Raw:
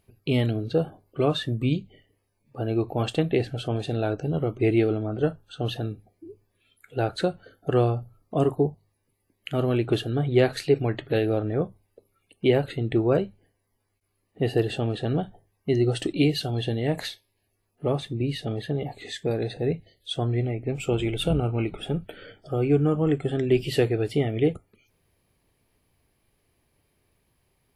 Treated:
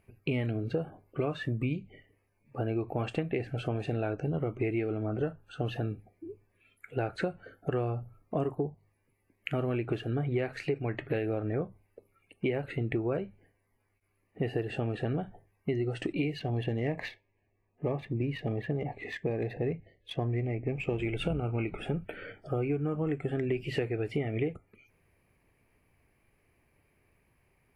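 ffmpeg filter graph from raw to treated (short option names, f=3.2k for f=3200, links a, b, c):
-filter_complex "[0:a]asettb=1/sr,asplit=3[a][b][c];[a]atrim=end=16.394[d];[b]atrim=start=16.39:end=21,asetpts=PTS-STARTPTS,afade=t=in:d=0.004:c=qsin,afade=t=out:st=4.606:d=0.004:c=qsin,adynamicsmooth=sensitivity=4.5:basefreq=2.5k,asuperstop=centerf=1400:order=4:qfactor=4.3[e];[c]atrim=start=20.996[f];[d][e]acrossfade=d=0.004:c1=hsin:c2=qsin[g];[g][f]acrossfade=d=0.004:c1=qsin:c2=hsin,acrossover=split=7500[h][i];[i]acompressor=threshold=-59dB:ratio=4:attack=1:release=60[j];[h][j]amix=inputs=2:normalize=0,highshelf=f=2.9k:t=q:w=3:g=-6,acompressor=threshold=-28dB:ratio=6"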